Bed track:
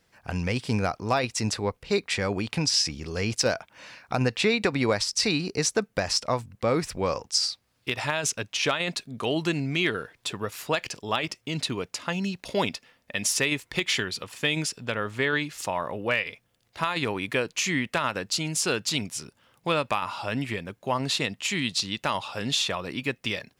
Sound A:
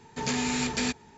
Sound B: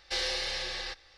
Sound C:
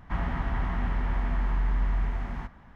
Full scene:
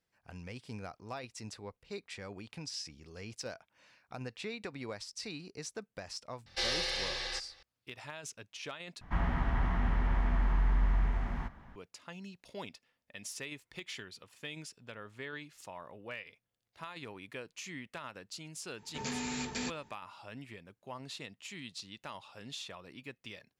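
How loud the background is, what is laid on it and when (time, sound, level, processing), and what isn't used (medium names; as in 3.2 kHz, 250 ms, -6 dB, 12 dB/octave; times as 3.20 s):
bed track -18 dB
6.46 s: add B -1.5 dB
9.01 s: replace with C -2 dB
18.78 s: add A -9 dB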